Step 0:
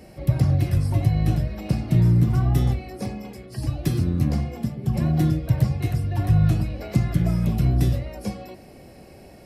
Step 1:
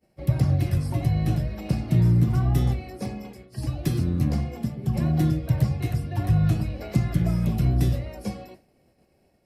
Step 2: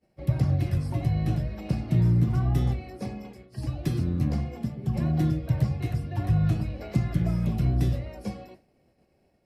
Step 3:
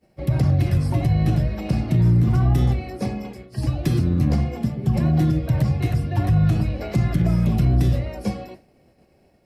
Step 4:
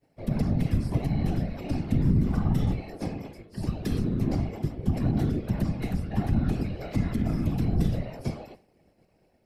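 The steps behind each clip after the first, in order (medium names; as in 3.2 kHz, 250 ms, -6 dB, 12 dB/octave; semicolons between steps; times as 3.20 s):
hum notches 50/100 Hz; expander -34 dBFS; trim -1.5 dB
treble shelf 7.3 kHz -8 dB; trim -2.5 dB
peak limiter -19 dBFS, peak gain reduction 7 dB; trim +8.5 dB
whisper effect; trim -7 dB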